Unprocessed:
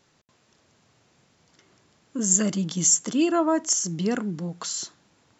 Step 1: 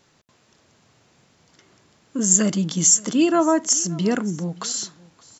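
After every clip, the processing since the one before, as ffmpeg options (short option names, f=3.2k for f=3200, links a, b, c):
-af "aecho=1:1:574:0.0708,volume=4dB"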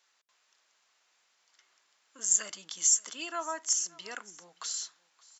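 -af "highpass=1.1k,volume=-8.5dB"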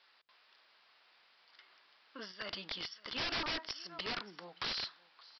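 -af "acompressor=threshold=-29dB:ratio=20,aresample=11025,aeval=exprs='(mod(70.8*val(0)+1,2)-1)/70.8':c=same,aresample=44100,volume=6dB"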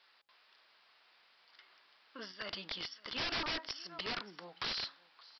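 -af "bandreject=f=274.5:t=h:w=4,bandreject=f=549:t=h:w=4,bandreject=f=823.5:t=h:w=4"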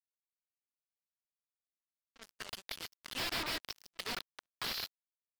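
-af "acrusher=bits=5:mix=0:aa=0.5,volume=-1dB"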